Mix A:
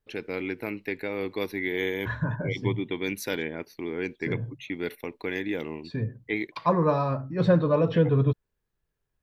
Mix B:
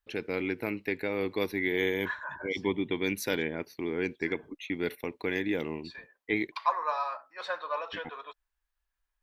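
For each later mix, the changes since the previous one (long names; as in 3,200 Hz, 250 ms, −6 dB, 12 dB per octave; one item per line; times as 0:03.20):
second voice: add high-pass filter 830 Hz 24 dB per octave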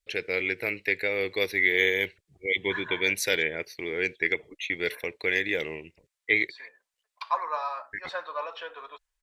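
first voice: add graphic EQ with 10 bands 250 Hz −11 dB, 500 Hz +7 dB, 1,000 Hz −8 dB, 2,000 Hz +10 dB, 4,000 Hz +5 dB, 8,000 Hz +9 dB
second voice: entry +0.65 s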